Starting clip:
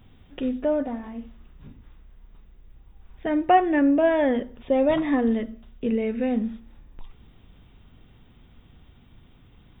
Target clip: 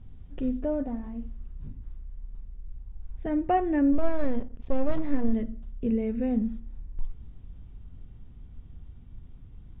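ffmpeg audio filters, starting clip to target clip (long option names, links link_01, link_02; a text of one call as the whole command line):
ffmpeg -i in.wav -filter_complex "[0:a]asplit=3[link_01][link_02][link_03];[link_01]afade=type=out:start_time=3.92:duration=0.02[link_04];[link_02]aeval=exprs='if(lt(val(0),0),0.251*val(0),val(0))':channel_layout=same,afade=type=in:start_time=3.92:duration=0.02,afade=type=out:start_time=5.32:duration=0.02[link_05];[link_03]afade=type=in:start_time=5.32:duration=0.02[link_06];[link_04][link_05][link_06]amix=inputs=3:normalize=0,aemphasis=mode=reproduction:type=riaa,volume=-8.5dB" out.wav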